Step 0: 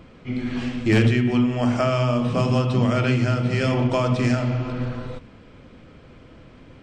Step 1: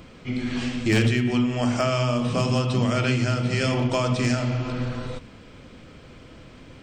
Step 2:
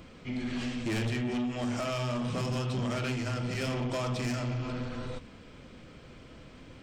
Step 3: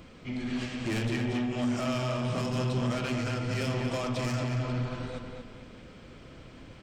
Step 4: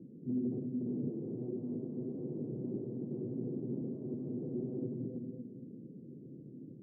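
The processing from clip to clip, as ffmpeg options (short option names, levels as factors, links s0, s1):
-filter_complex "[0:a]highshelf=f=3800:g=11,asplit=2[s0][s1];[s1]acompressor=threshold=0.0501:ratio=6,volume=0.891[s2];[s0][s2]amix=inputs=2:normalize=0,volume=0.562"
-af "asoftclip=type=tanh:threshold=0.0668,flanger=delay=3.5:depth=2.4:regen=-84:speed=0.59:shape=triangular"
-filter_complex "[0:a]asplit=2[s0][s1];[s1]adelay=230,lowpass=f=3800:p=1,volume=0.631,asplit=2[s2][s3];[s3]adelay=230,lowpass=f=3800:p=1,volume=0.38,asplit=2[s4][s5];[s5]adelay=230,lowpass=f=3800:p=1,volume=0.38,asplit=2[s6][s7];[s7]adelay=230,lowpass=f=3800:p=1,volume=0.38,asplit=2[s8][s9];[s9]adelay=230,lowpass=f=3800:p=1,volume=0.38[s10];[s0][s2][s4][s6][s8][s10]amix=inputs=6:normalize=0"
-af "aeval=exprs='(mod(26.6*val(0)+1,2)-1)/26.6':c=same,asuperpass=centerf=230:order=8:qfactor=0.84,volume=1.33"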